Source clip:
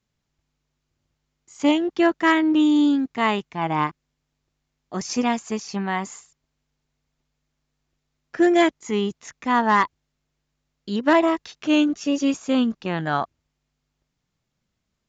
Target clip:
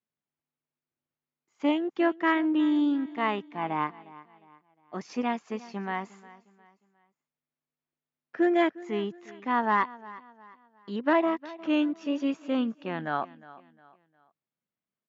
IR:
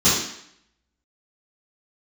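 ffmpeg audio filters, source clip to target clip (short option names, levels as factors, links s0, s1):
-af "agate=range=0.447:threshold=0.00708:ratio=16:detection=peak,highpass=200,lowpass=2800,aecho=1:1:357|714|1071:0.112|0.0426|0.0162,volume=0.501"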